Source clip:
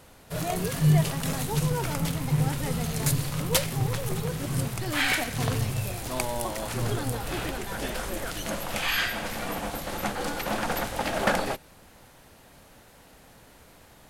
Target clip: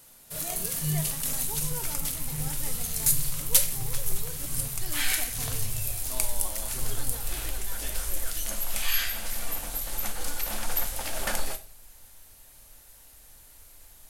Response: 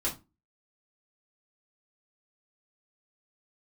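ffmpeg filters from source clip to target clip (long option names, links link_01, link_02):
-filter_complex "[0:a]asubboost=boost=7.5:cutoff=62,crystalizer=i=4:c=0,asplit=2[link_01][link_02];[1:a]atrim=start_sample=2205,asetrate=27783,aresample=44100,highshelf=frequency=5600:gain=11.5[link_03];[link_02][link_03]afir=irnorm=-1:irlink=0,volume=-17dB[link_04];[link_01][link_04]amix=inputs=2:normalize=0,volume=-12dB"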